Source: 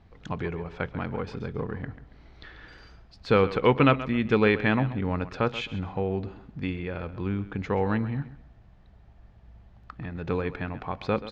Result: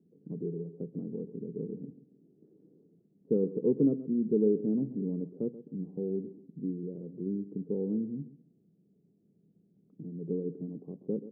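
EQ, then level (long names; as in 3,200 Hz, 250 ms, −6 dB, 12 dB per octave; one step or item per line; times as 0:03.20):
elliptic band-pass filter 160–430 Hz, stop band 70 dB
−2.0 dB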